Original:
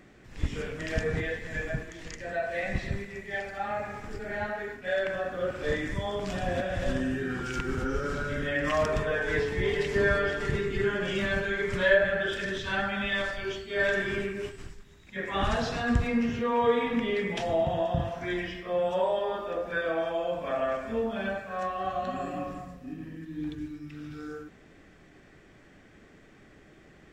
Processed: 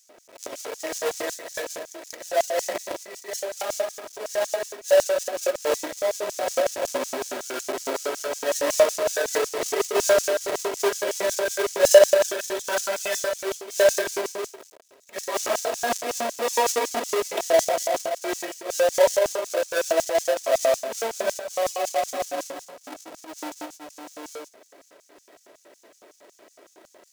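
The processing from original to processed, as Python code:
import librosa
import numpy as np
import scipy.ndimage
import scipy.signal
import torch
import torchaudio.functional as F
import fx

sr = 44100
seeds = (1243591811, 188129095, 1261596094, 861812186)

y = fx.halfwave_hold(x, sr)
y = y + 0.5 * np.pad(y, (int(3.1 * sr / 1000.0), 0))[:len(y)]
y = fx.filter_lfo_highpass(y, sr, shape='square', hz=5.4, low_hz=520.0, high_hz=6300.0, q=3.5)
y = y * librosa.db_to_amplitude(-2.0)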